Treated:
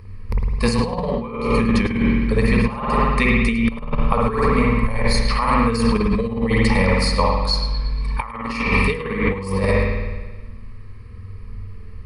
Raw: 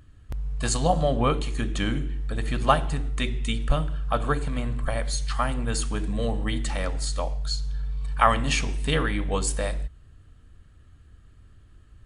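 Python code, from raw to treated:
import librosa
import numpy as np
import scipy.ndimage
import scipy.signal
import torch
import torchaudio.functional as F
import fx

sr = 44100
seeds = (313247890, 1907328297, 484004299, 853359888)

y = fx.ripple_eq(x, sr, per_octave=0.88, db=16)
y = fx.rev_spring(y, sr, rt60_s=1.3, pass_ms=(52,), chirp_ms=65, drr_db=-2.0)
y = fx.over_compress(y, sr, threshold_db=-23.0, ratio=-0.5)
y = fx.high_shelf(y, sr, hz=6800.0, db=-11.0)
y = y + 10.0 ** (-15.0 / 20.0) * np.pad(y, (int(105 * sr / 1000.0), 0))[:len(y)]
y = y * 10.0 ** (5.5 / 20.0)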